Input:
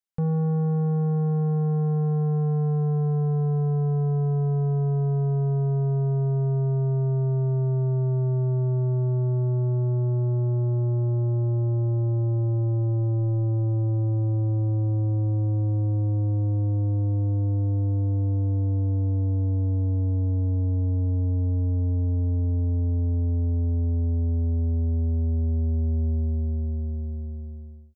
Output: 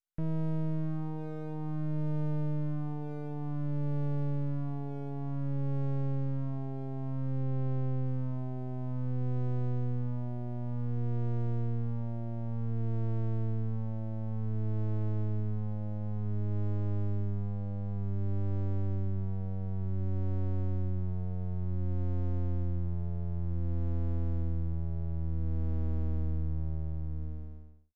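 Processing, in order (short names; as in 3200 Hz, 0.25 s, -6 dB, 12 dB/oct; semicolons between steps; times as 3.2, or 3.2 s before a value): ending faded out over 0.71 s; limiter -25.5 dBFS, peak gain reduction 3.5 dB; phaser stages 4, 0.55 Hz, lowest notch 230–1100 Hz; half-wave rectifier; 7.43–8.06 air absorption 53 m; MP3 64 kbps 32000 Hz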